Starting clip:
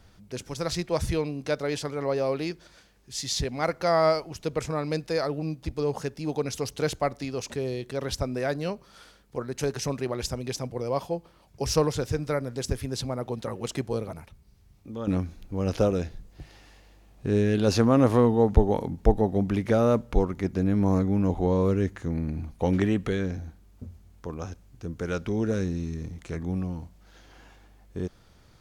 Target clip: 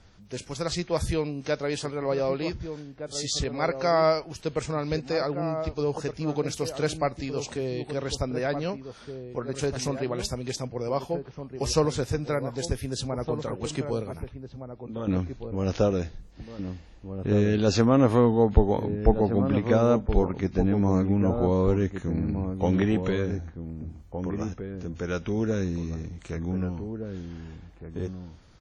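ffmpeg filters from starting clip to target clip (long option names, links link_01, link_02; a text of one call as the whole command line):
ffmpeg -i in.wav -filter_complex "[0:a]asplit=2[link_01][link_02];[link_02]adelay=1516,volume=-8dB,highshelf=frequency=4000:gain=-34.1[link_03];[link_01][link_03]amix=inputs=2:normalize=0" -ar 48000 -c:a wmav2 -b:a 32k out.wma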